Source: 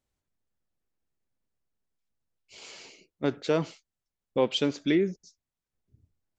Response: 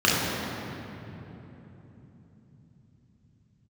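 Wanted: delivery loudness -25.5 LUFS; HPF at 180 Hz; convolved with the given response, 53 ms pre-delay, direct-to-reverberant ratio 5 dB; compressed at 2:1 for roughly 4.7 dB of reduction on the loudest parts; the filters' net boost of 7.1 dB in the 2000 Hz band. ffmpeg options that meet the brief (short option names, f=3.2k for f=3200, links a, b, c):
-filter_complex "[0:a]highpass=180,equalizer=f=2k:t=o:g=8.5,acompressor=threshold=-27dB:ratio=2,asplit=2[a][b];[1:a]atrim=start_sample=2205,adelay=53[c];[b][c]afir=irnorm=-1:irlink=0,volume=-25dB[d];[a][d]amix=inputs=2:normalize=0,volume=6.5dB"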